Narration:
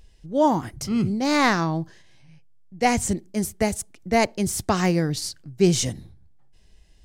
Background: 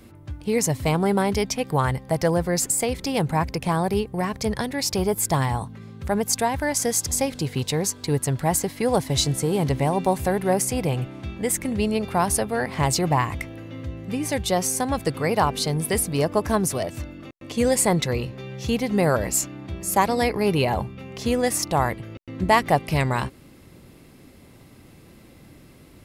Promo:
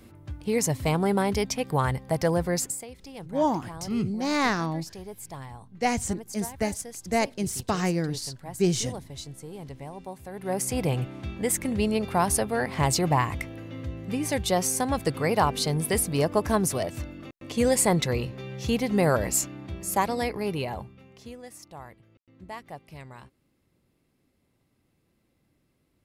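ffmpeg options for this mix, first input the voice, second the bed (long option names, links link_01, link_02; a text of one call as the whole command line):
ffmpeg -i stem1.wav -i stem2.wav -filter_complex "[0:a]adelay=3000,volume=-5dB[link_01];[1:a]volume=13dB,afade=type=out:start_time=2.53:duration=0.31:silence=0.177828,afade=type=in:start_time=10.31:duration=0.5:silence=0.158489,afade=type=out:start_time=19.32:duration=2.06:silence=0.1[link_02];[link_01][link_02]amix=inputs=2:normalize=0" out.wav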